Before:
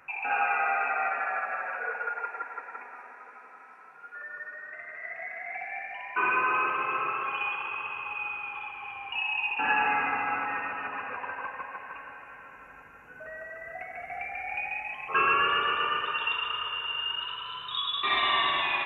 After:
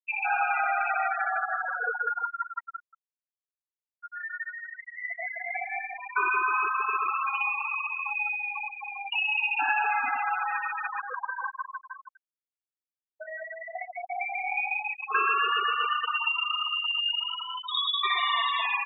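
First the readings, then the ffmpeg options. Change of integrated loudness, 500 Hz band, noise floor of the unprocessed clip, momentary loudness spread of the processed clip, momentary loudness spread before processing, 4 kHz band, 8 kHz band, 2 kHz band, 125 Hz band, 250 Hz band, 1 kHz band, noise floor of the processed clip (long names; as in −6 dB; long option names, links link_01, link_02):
+1.5 dB, −2.5 dB, −50 dBFS, 13 LU, 18 LU, +2.0 dB, can't be measured, +1.0 dB, below −35 dB, below −10 dB, +1.0 dB, below −85 dBFS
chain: -af "acompressor=threshold=-30dB:ratio=2.5,afftfilt=real='re*gte(hypot(re,im),0.0562)':imag='im*gte(hypot(re,im),0.0562)':win_size=1024:overlap=0.75,volume=6dB"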